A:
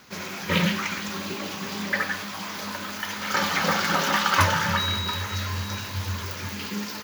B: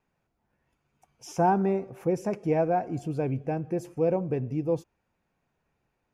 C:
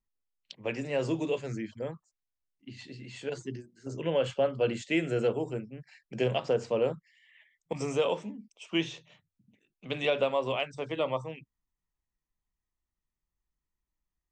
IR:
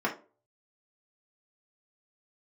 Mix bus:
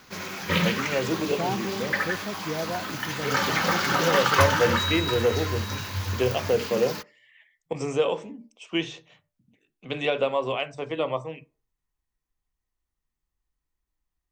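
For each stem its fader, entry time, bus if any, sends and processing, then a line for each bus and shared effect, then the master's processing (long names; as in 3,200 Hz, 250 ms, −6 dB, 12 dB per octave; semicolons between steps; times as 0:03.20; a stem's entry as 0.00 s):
−1.5 dB, 0.00 s, send −23 dB, no processing
−7.0 dB, 0.00 s, no send, no processing
+1.5 dB, 0.00 s, send −18 dB, no processing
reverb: on, RT60 0.35 s, pre-delay 3 ms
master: low-shelf EQ 96 Hz +5 dB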